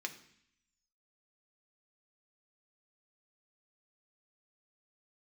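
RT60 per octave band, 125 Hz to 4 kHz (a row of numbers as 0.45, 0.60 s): 0.90, 0.85, 0.60, 0.70, 0.85, 0.85 s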